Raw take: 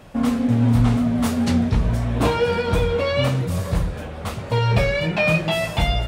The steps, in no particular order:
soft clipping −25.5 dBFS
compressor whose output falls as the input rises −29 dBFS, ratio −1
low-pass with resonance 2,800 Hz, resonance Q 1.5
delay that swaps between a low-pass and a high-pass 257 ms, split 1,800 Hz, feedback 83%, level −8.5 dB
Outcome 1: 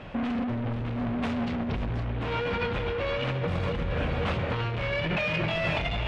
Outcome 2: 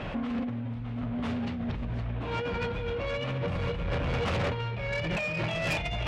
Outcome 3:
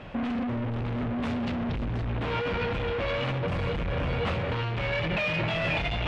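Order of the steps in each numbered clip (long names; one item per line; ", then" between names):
soft clipping, then delay that swaps between a low-pass and a high-pass, then compressor whose output falls as the input rises, then low-pass with resonance
delay that swaps between a low-pass and a high-pass, then compressor whose output falls as the input rises, then low-pass with resonance, then soft clipping
delay that swaps between a low-pass and a high-pass, then soft clipping, then compressor whose output falls as the input rises, then low-pass with resonance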